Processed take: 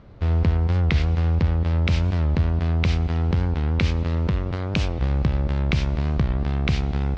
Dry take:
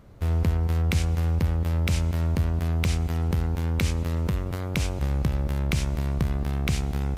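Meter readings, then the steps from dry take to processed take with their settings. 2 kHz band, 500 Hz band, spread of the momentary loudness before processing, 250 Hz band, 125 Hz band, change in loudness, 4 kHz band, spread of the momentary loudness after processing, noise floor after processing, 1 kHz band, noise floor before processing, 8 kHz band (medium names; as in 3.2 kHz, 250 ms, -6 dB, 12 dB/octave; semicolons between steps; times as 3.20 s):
+3.5 dB, +3.5 dB, 3 LU, +3.5 dB, +3.5 dB, +3.5 dB, +2.5 dB, 3 LU, -27 dBFS, +3.5 dB, -30 dBFS, no reading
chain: low-pass 4.8 kHz 24 dB/octave; warped record 45 rpm, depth 160 cents; trim +3.5 dB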